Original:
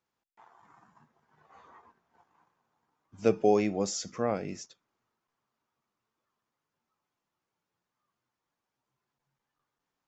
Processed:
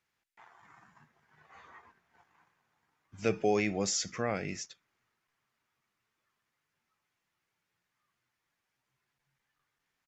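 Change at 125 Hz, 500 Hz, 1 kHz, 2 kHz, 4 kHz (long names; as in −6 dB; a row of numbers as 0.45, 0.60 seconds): −0.5, −4.5, −3.5, +5.5, +3.5 decibels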